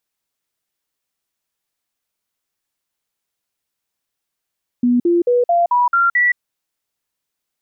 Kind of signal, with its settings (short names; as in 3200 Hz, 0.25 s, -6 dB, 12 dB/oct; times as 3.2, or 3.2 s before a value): stepped sine 244 Hz up, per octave 2, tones 7, 0.17 s, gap 0.05 s -11 dBFS